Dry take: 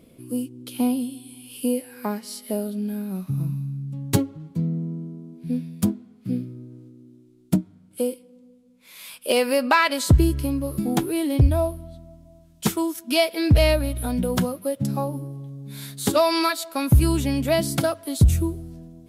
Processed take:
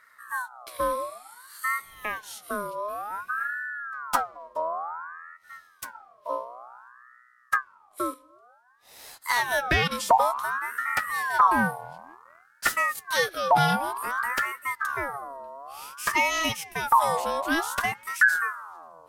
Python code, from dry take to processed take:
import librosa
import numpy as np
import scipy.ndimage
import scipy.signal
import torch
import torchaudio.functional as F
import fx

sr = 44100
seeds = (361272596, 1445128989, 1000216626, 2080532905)

y = fx.highpass(x, sr, hz=1400.0, slope=6, at=(5.36, 5.93), fade=0.02)
y = fx.leveller(y, sr, passes=1, at=(11.34, 13.06))
y = fx.ring_lfo(y, sr, carrier_hz=1200.0, swing_pct=35, hz=0.55)
y = y * librosa.db_to_amplitude(-2.0)